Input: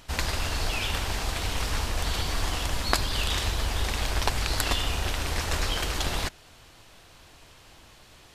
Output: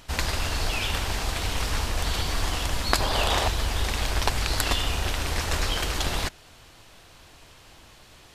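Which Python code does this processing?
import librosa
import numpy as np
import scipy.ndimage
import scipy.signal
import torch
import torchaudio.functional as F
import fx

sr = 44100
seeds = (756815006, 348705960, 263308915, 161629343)

y = fx.peak_eq(x, sr, hz=700.0, db=11.5, octaves=1.6, at=(3.0, 3.48))
y = F.gain(torch.from_numpy(y), 1.5).numpy()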